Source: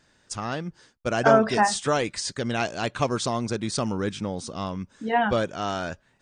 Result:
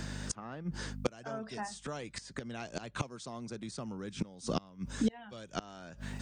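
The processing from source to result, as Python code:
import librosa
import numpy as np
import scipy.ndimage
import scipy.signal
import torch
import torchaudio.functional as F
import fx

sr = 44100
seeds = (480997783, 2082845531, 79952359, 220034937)

y = scipy.signal.sosfilt(scipy.signal.butter(4, 120.0, 'highpass', fs=sr, output='sos'), x)
y = fx.bass_treble(y, sr, bass_db=5, treble_db=4)
y = fx.add_hum(y, sr, base_hz=50, snr_db=27)
y = fx.gate_flip(y, sr, shuts_db=-20.0, range_db=-31)
y = fx.band_squash(y, sr, depth_pct=70)
y = y * 10.0 ** (7.5 / 20.0)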